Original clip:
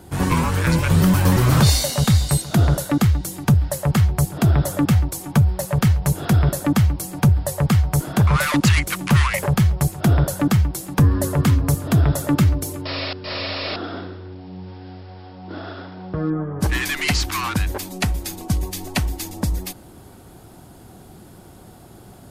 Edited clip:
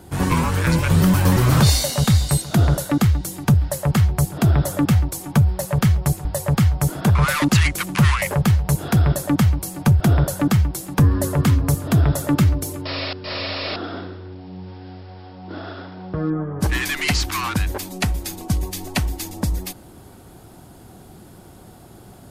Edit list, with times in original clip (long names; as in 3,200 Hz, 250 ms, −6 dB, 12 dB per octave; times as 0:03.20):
0:05.86–0:07.37: swap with 0:09.61–0:10.00